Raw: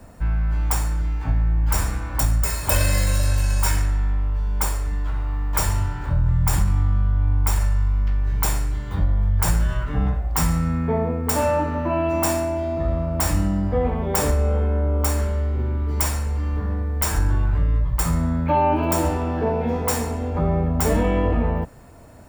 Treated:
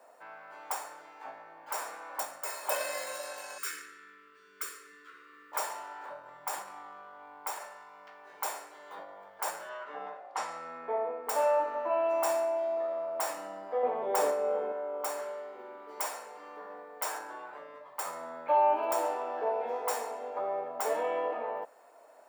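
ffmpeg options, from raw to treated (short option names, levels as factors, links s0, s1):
-filter_complex "[0:a]asettb=1/sr,asplit=3[s0][s1][s2];[s0]atrim=end=3.584[s3];[s1]atrim=start=3.58:end=5.52,asetpts=PTS-STARTPTS,afade=t=in:d=0.004:c=qsin,afade=t=out:st=1.936:d=0.004:c=qsin,asuperstop=centerf=740:order=8:qfactor=0.95[s4];[s2]atrim=start=5.516[s5];[s3][s4]acrossfade=d=0.004:c1=hsin:c2=qsin[s6];[s6][s5]acrossfade=d=0.004:c1=qsin:c2=hsin,asettb=1/sr,asplit=3[s7][s8][s9];[s7]atrim=end=9.694[s10];[s8]atrim=start=9.69:end=11.27,asetpts=PTS-STARTPTS,afade=t=in:d=0.004:c=qsin,afade=t=out:st=1.576:d=0.004:c=qsin,highpass=130,lowpass=5800[s11];[s9]atrim=start=11.266[s12];[s10][s11]acrossfade=d=0.004:c1=hsin:c2=qsin[s13];[s13][s12]acrossfade=d=0.004:c1=qsin:c2=hsin,asettb=1/sr,asplit=3[s14][s15][s16];[s14]atrim=end=13.834[s17];[s15]atrim=start=13.83:end=14.72,asetpts=PTS-STARTPTS,afade=t=in:d=0.004:c=qsin,afade=t=out:st=0.886:d=0.004:c=qsin,lowshelf=f=430:g=11.5[s18];[s16]atrim=start=14.716[s19];[s17][s18]acrossfade=d=0.004:c1=hsin:c2=qsin[s20];[s20][s19]acrossfade=d=0.004:c1=qsin:c2=hsin,highpass=f=580:w=0.5412,highpass=f=580:w=1.3066,tiltshelf=f=970:g=7,volume=0.531"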